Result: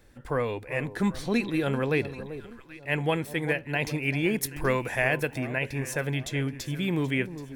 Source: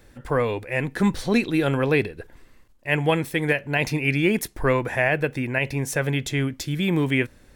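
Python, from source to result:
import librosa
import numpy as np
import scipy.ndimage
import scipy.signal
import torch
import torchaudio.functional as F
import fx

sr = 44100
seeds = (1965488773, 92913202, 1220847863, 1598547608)

y = fx.high_shelf(x, sr, hz=3400.0, db=9.0, at=(4.43, 5.38))
y = fx.echo_alternate(y, sr, ms=389, hz=1100.0, feedback_pct=59, wet_db=-12)
y = y * librosa.db_to_amplitude(-5.5)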